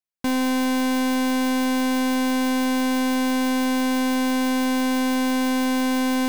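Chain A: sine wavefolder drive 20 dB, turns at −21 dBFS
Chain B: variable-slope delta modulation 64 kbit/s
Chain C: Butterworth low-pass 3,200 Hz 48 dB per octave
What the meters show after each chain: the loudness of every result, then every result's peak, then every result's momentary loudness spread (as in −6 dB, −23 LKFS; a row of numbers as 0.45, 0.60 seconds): −29.0, −22.5, −22.0 LKFS; −25.5, −20.5, −18.5 dBFS; 0, 0, 0 LU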